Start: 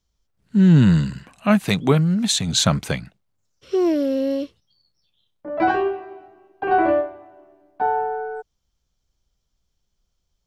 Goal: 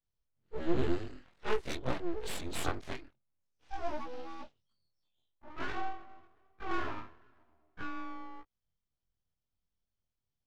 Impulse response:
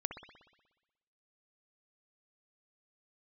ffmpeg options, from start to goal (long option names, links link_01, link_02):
-af "afftfilt=real='re':imag='-im':win_size=2048:overlap=0.75,aeval=exprs='abs(val(0))':channel_layout=same,adynamicsmooth=sensitivity=6:basefreq=5100,volume=-9dB"